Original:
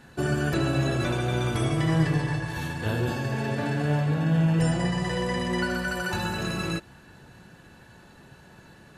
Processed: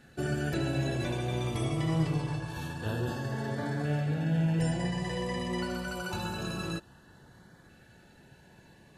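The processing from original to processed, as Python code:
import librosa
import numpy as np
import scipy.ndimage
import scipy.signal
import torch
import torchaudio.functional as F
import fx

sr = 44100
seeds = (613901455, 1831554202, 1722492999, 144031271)

y = fx.filter_lfo_notch(x, sr, shape='saw_up', hz=0.26, low_hz=970.0, high_hz=2800.0, q=2.9)
y = y * librosa.db_to_amplitude(-5.5)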